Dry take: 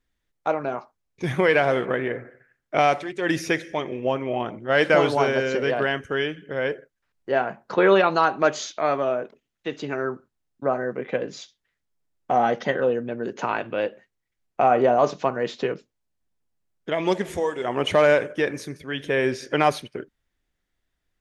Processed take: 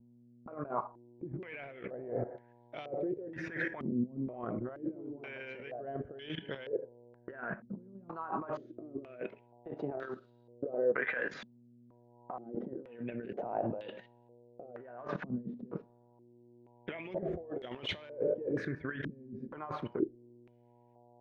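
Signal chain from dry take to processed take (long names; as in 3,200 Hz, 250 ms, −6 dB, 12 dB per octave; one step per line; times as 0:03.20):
noise gate −48 dBFS, range −17 dB
0:10.02–0:11.34: spectral tilt +4 dB per octave
output level in coarse steps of 14 dB
brickwall limiter −23.5 dBFS, peak gain reduction 16 dB
compressor whose output falls as the input rises −39 dBFS, ratio −0.5
hum with harmonics 120 Hz, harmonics 8, −63 dBFS −2 dB per octave
rotating-speaker cabinet horn 0.7 Hz
convolution reverb, pre-delay 3 ms, DRR 17 dB
low-pass on a step sequencer 2.1 Hz 220–3,600 Hz
level +1 dB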